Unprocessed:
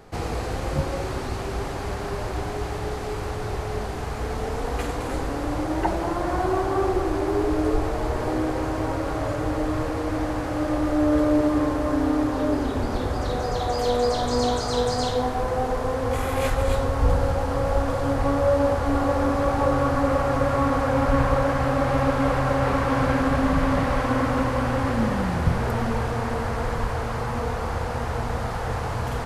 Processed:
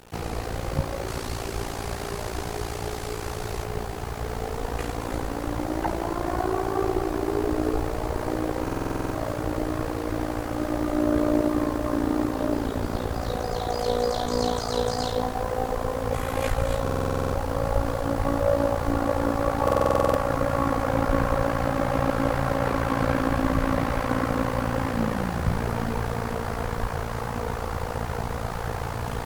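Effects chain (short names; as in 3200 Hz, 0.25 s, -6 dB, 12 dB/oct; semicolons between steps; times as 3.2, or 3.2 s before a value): 1.08–3.64 high shelf 3700 Hz +8.5 dB; AM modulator 57 Hz, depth 70%; bit-crush 8-bit; stuck buffer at 8.63/16.82/19.63, samples 2048, times 10; gain +1.5 dB; MP3 80 kbps 48000 Hz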